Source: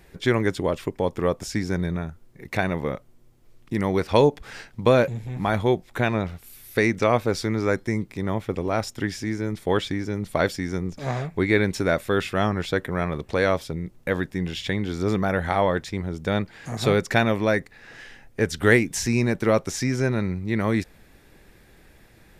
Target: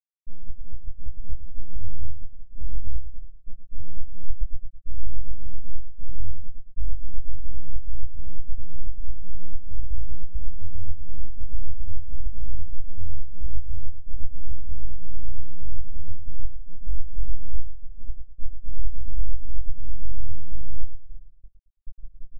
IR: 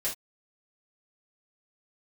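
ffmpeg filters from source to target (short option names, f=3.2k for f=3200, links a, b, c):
-filter_complex "[0:a]aeval=exprs='if(lt(val(0),0),0.251*val(0),val(0))':c=same,aemphasis=mode=reproduction:type=cd,bandreject=f=60:t=h:w=6,bandreject=f=120:t=h:w=6,bandreject=f=180:t=h:w=6,bandreject=f=240:t=h:w=6,bandreject=f=300:t=h:w=6,bandreject=f=360:t=h:w=6,bandreject=f=420:t=h:w=6,bandreject=f=480:t=h:w=6,bandreject=f=540:t=h:w=6,acrusher=samples=17:mix=1:aa=0.000001,asubboost=boost=9:cutoff=60,areverse,acompressor=threshold=-25dB:ratio=16,areverse,afftfilt=real='re*gte(hypot(re,im),0.355)':imag='im*gte(hypot(re,im),0.355)':win_size=1024:overlap=0.75,asplit=2[a][b];[b]adelay=21,volume=-6.5dB[c];[a][c]amix=inputs=2:normalize=0,asplit=2[d][e];[e]adelay=111,lowpass=f=3.6k:p=1,volume=-8.5dB,asplit=2[f][g];[g]adelay=111,lowpass=f=3.6k:p=1,volume=0.29,asplit=2[h][i];[i]adelay=111,lowpass=f=3.6k:p=1,volume=0.29[j];[d][f][h][j]amix=inputs=4:normalize=0,volume=12dB"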